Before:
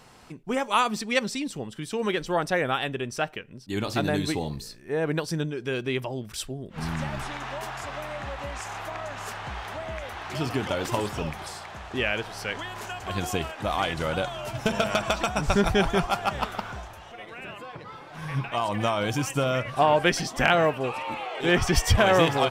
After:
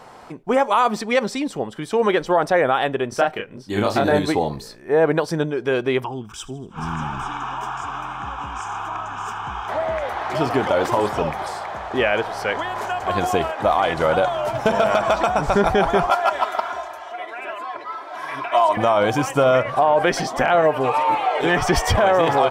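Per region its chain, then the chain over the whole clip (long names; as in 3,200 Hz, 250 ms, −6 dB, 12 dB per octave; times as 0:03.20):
0:03.09–0:04.19: parametric band 790 Hz −2.5 dB 1.8 octaves + double-tracking delay 29 ms −2 dB
0:06.04–0:09.69: phaser with its sweep stopped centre 2,900 Hz, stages 8 + delay with a high-pass on its return 79 ms, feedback 51%, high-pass 2,000 Hz, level −18 dB
0:16.10–0:18.77: high-pass filter 810 Hz 6 dB per octave + comb filter 3 ms, depth 83%
0:20.61–0:21.69: high-shelf EQ 4,900 Hz +5 dB + comb filter 6.8 ms, depth 59% + downward compressor 2 to 1, threshold −25 dBFS
whole clip: parametric band 740 Hz +13.5 dB 2.7 octaves; notch filter 2,700 Hz, Q 17; brickwall limiter −7.5 dBFS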